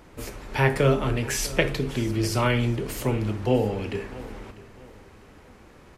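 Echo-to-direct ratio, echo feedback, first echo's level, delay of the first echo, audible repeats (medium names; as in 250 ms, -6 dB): -18.0 dB, 34%, -18.5 dB, 648 ms, 2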